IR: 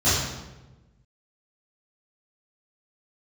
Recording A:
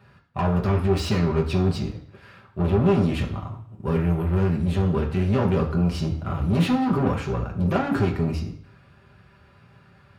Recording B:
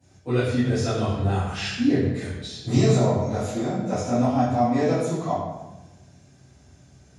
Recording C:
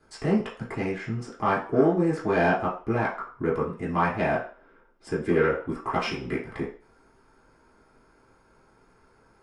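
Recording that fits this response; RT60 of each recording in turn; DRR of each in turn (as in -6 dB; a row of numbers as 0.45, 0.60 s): B; 0.55, 1.1, 0.40 s; -1.5, -15.5, -8.0 dB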